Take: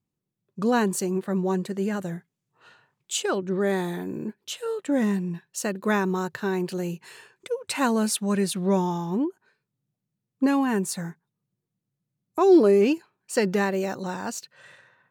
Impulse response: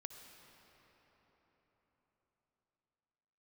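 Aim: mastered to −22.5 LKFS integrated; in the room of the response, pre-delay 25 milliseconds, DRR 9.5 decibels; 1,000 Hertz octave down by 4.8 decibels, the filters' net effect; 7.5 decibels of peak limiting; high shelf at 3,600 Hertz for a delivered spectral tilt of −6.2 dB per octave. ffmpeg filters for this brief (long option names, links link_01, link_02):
-filter_complex "[0:a]equalizer=frequency=1000:width_type=o:gain=-5.5,highshelf=frequency=3600:gain=-8,alimiter=limit=-16.5dB:level=0:latency=1,asplit=2[link_01][link_02];[1:a]atrim=start_sample=2205,adelay=25[link_03];[link_02][link_03]afir=irnorm=-1:irlink=0,volume=-5dB[link_04];[link_01][link_04]amix=inputs=2:normalize=0,volume=4.5dB"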